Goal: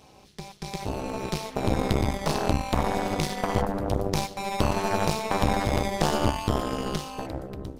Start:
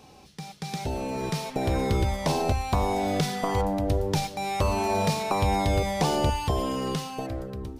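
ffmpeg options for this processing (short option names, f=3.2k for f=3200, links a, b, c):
-af "tremolo=f=210:d=0.919,aeval=exprs='0.224*(cos(1*acos(clip(val(0)/0.224,-1,1)))-cos(1*PI/2))+0.0562*(cos(4*acos(clip(val(0)/0.224,-1,1)))-cos(4*PI/2))':c=same,volume=2.5dB"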